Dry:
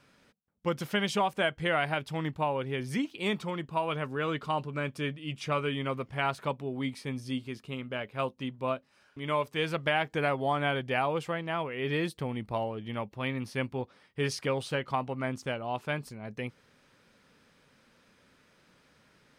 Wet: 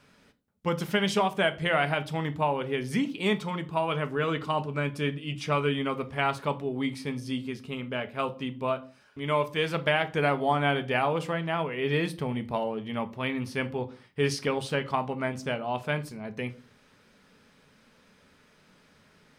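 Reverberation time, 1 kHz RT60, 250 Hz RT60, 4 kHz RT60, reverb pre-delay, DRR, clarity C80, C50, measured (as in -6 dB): 0.40 s, 0.35 s, 0.40 s, 0.30 s, 4 ms, 9.0 dB, 23.5 dB, 18.0 dB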